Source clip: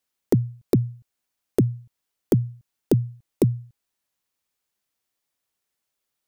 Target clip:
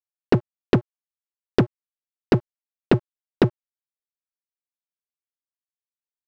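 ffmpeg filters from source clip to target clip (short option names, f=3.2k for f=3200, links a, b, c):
-af "acompressor=threshold=-24dB:ratio=3,aresample=11025,acrusher=bits=3:mix=0:aa=0.5,aresample=44100,aeval=exprs='sgn(val(0))*max(abs(val(0))-0.01,0)':c=same,volume=8dB"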